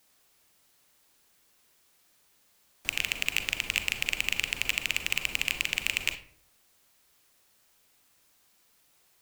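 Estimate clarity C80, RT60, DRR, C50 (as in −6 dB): 16.0 dB, 0.55 s, 10.0 dB, 12.0 dB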